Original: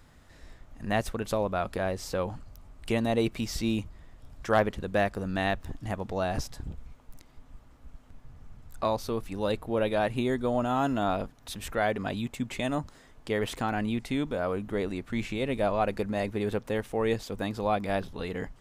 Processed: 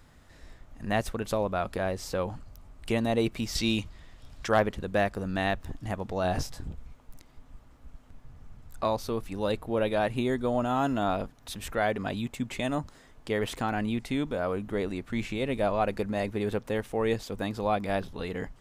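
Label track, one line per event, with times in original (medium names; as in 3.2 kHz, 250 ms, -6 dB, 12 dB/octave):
3.550000	4.480000	peaking EQ 3.9 kHz +9 dB 2.2 oct
6.220000	6.680000	doubling 22 ms -5 dB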